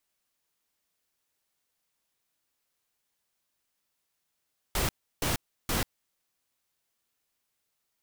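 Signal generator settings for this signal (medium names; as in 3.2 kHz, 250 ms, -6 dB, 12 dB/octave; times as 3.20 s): noise bursts pink, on 0.14 s, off 0.33 s, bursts 3, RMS -28 dBFS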